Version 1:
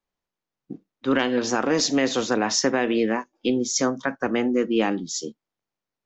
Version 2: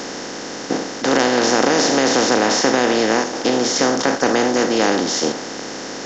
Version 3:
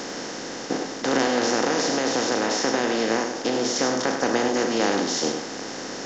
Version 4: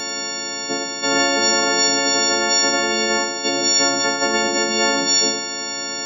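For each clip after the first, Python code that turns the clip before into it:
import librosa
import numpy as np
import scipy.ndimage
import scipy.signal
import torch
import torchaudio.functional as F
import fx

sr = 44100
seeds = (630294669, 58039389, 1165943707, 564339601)

y1 = fx.bin_compress(x, sr, power=0.2)
y1 = fx.dynamic_eq(y1, sr, hz=740.0, q=0.93, threshold_db=-27.0, ratio=4.0, max_db=4)
y1 = F.gain(torch.from_numpy(y1), -2.5).numpy()
y2 = fx.rider(y1, sr, range_db=3, speed_s=2.0)
y2 = y2 + 10.0 ** (-7.5 / 20.0) * np.pad(y2, (int(100 * sr / 1000.0), 0))[:len(y2)]
y2 = F.gain(torch.from_numpy(y2), -7.0).numpy()
y3 = fx.freq_snap(y2, sr, grid_st=4)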